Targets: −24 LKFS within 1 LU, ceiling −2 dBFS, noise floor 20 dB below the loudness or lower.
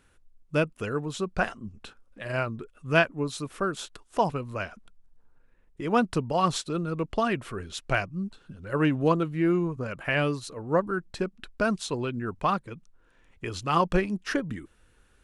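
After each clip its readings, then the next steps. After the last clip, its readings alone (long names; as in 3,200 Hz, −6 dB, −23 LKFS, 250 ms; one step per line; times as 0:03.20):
integrated loudness −28.5 LKFS; sample peak −7.5 dBFS; target loudness −24.0 LKFS
→ level +4.5 dB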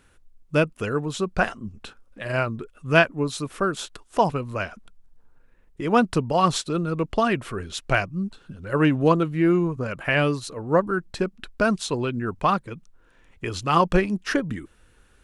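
integrated loudness −24.0 LKFS; sample peak −3.0 dBFS; background noise floor −57 dBFS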